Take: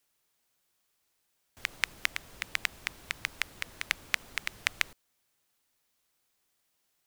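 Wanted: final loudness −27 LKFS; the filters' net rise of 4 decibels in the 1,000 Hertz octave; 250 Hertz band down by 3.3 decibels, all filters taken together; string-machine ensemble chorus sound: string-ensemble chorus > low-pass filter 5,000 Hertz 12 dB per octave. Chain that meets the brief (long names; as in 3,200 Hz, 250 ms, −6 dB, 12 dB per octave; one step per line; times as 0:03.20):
parametric band 250 Hz −5 dB
parametric band 1,000 Hz +5.5 dB
string-ensemble chorus
low-pass filter 5,000 Hz 12 dB per octave
level +10 dB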